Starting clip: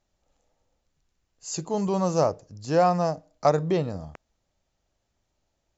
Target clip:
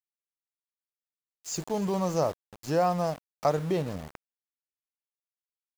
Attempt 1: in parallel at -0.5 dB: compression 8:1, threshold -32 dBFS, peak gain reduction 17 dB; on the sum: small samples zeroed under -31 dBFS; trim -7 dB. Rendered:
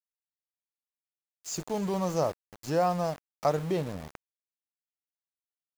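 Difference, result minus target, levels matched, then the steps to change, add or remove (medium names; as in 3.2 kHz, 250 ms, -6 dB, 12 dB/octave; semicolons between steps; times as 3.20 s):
compression: peak gain reduction +5 dB
change: compression 8:1, threshold -26 dBFS, peak gain reduction 11.5 dB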